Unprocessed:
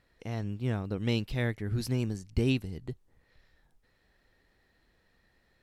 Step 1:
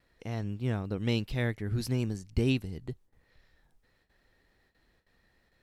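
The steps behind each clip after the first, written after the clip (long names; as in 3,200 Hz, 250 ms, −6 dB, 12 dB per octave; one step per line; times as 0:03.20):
noise gate with hold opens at −59 dBFS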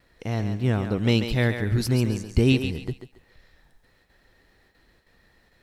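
feedback echo with a high-pass in the loop 138 ms, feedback 32%, high-pass 340 Hz, level −7 dB
level +8 dB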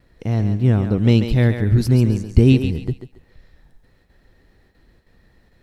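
low-shelf EQ 460 Hz +10.5 dB
level −1.5 dB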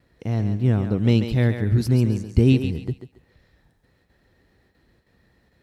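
high-pass filter 62 Hz
level −3.5 dB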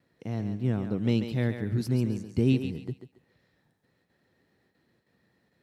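Chebyshev high-pass filter 150 Hz, order 2
level −6 dB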